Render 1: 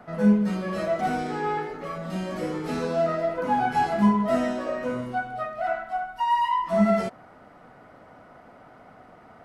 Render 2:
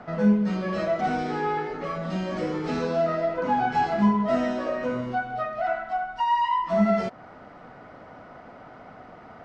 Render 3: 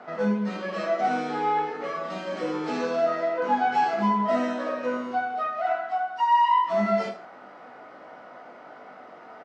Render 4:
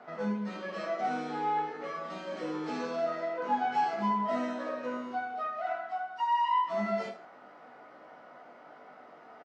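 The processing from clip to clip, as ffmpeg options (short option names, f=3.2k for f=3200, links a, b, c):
-filter_complex "[0:a]lowpass=f=6.3k:w=0.5412,lowpass=f=6.3k:w=1.3066,asplit=2[a][b];[b]acompressor=threshold=-33dB:ratio=6,volume=1.5dB[c];[a][c]amix=inputs=2:normalize=0,volume=-2.5dB"
-af "highpass=320,aecho=1:1:20|45|76.25|115.3|164.1:0.631|0.398|0.251|0.158|0.1,volume=-1dB"
-filter_complex "[0:a]asplit=2[a][b];[b]adelay=13,volume=-12dB[c];[a][c]amix=inputs=2:normalize=0,volume=-7dB"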